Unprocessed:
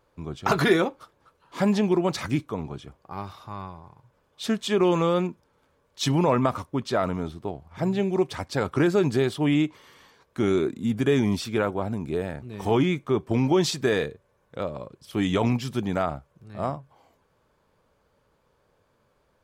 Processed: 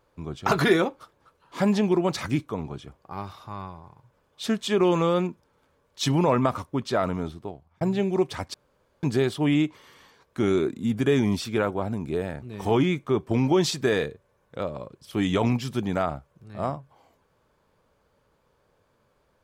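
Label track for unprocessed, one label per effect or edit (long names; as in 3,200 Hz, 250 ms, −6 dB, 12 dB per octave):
7.280000	7.810000	fade out
8.540000	9.030000	fill with room tone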